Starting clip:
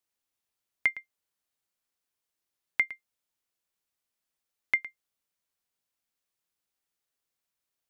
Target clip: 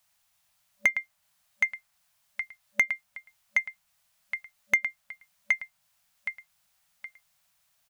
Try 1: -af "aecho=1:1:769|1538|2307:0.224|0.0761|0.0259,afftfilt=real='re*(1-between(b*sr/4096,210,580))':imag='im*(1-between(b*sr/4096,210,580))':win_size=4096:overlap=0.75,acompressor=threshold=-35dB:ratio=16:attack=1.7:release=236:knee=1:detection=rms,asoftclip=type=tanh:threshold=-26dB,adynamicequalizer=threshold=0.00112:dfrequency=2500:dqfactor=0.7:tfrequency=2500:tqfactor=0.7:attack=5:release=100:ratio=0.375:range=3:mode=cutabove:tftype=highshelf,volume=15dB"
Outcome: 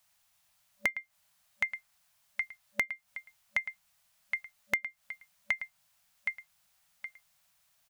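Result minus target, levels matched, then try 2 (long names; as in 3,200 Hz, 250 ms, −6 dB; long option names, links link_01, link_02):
downward compressor: peak gain reduction +8.5 dB
-af "aecho=1:1:769|1538|2307:0.224|0.0761|0.0259,afftfilt=real='re*(1-between(b*sr/4096,210,580))':imag='im*(1-between(b*sr/4096,210,580))':win_size=4096:overlap=0.75,acompressor=threshold=-26dB:ratio=16:attack=1.7:release=236:knee=1:detection=rms,asoftclip=type=tanh:threshold=-26dB,adynamicequalizer=threshold=0.00112:dfrequency=2500:dqfactor=0.7:tfrequency=2500:tqfactor=0.7:attack=5:release=100:ratio=0.375:range=3:mode=cutabove:tftype=highshelf,volume=15dB"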